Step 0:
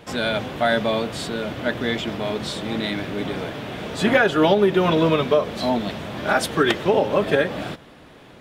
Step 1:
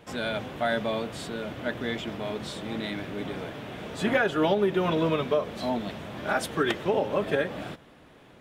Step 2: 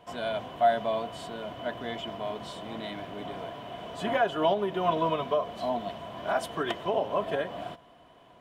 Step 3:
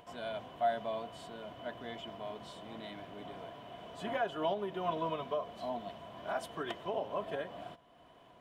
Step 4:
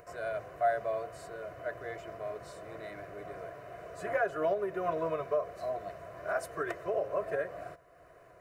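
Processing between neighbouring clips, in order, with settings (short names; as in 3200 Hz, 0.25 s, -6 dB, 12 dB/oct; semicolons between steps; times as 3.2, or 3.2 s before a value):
bell 4500 Hz -3 dB 0.74 oct; gain -7 dB
small resonant body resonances 700/990/3000 Hz, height 16 dB, ringing for 45 ms; gain -7 dB
upward compressor, threshold -44 dBFS; gain -8.5 dB
fixed phaser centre 880 Hz, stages 6; gain +6.5 dB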